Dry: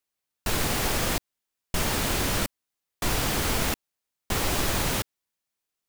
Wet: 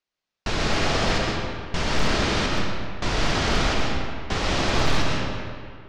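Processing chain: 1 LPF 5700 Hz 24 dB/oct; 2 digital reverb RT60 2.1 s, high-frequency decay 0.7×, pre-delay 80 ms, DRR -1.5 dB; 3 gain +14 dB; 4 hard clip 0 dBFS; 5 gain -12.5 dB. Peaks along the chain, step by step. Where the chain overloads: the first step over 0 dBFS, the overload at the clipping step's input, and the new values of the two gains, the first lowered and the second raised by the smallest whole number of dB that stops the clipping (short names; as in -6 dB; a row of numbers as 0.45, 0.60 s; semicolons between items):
-13.0, -8.5, +5.5, 0.0, -12.5 dBFS; step 3, 5.5 dB; step 3 +8 dB, step 5 -6.5 dB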